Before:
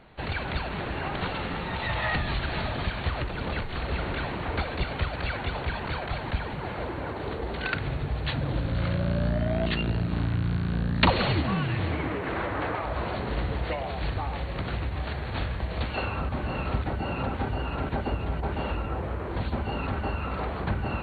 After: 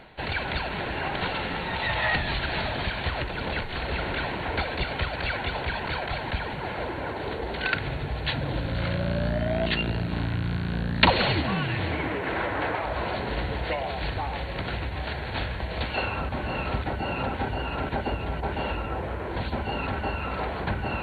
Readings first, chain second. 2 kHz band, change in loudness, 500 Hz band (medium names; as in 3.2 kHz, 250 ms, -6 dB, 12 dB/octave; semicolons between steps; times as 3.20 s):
+4.0 dB, +1.5 dB, +2.0 dB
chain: bass shelf 410 Hz -6.5 dB; band-stop 1.2 kHz, Q 6.7; reverse; upward compressor, threshold -36 dBFS; reverse; trim +4.5 dB